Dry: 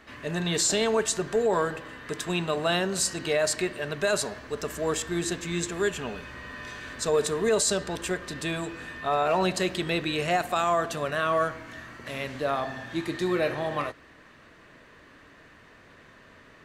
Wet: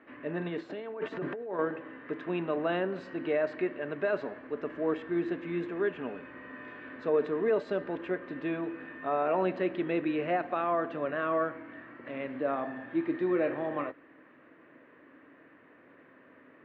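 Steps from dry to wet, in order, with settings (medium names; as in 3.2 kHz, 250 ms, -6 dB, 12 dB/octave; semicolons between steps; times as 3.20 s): peaking EQ 250 Hz +14 dB 0.41 oct; 0.48–1.59 s: compressor with a negative ratio -30 dBFS, ratio -1; cabinet simulation 170–2400 Hz, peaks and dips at 230 Hz -10 dB, 320 Hz +6 dB, 530 Hz +5 dB; trim -6 dB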